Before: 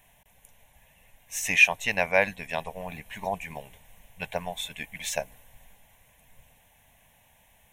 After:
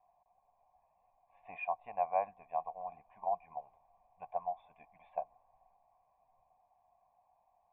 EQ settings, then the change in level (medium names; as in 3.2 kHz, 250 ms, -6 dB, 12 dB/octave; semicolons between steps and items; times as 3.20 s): cascade formant filter a; +2.5 dB